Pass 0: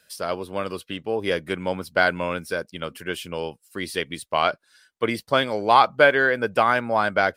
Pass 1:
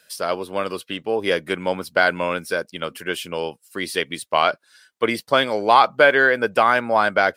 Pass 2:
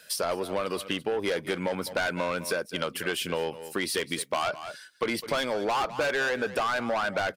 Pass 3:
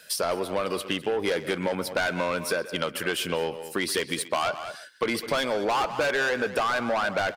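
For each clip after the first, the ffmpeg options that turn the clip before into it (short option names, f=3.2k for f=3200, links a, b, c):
-filter_complex "[0:a]highpass=f=230:p=1,asplit=2[a][b];[b]alimiter=limit=-9.5dB:level=0:latency=1,volume=0.5dB[c];[a][c]amix=inputs=2:normalize=0,volume=-2dB"
-af "asoftclip=type=tanh:threshold=-19dB,aecho=1:1:205:0.133,acompressor=threshold=-30dB:ratio=6,volume=4dB"
-filter_complex "[0:a]asplit=2[a][b];[b]adelay=130,highpass=300,lowpass=3.4k,asoftclip=type=hard:threshold=-25dB,volume=-13dB[c];[a][c]amix=inputs=2:normalize=0,volume=2dB"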